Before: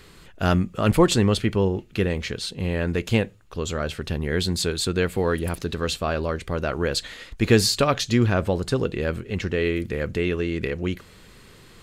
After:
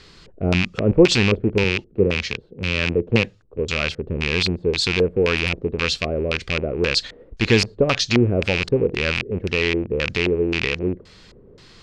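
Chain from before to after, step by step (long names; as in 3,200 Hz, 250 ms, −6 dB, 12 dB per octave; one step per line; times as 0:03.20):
loose part that buzzes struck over −27 dBFS, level −10 dBFS
auto-filter low-pass square 1.9 Hz 460–5,200 Hz
0:01.64–0:03.59: multiband upward and downward expander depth 40%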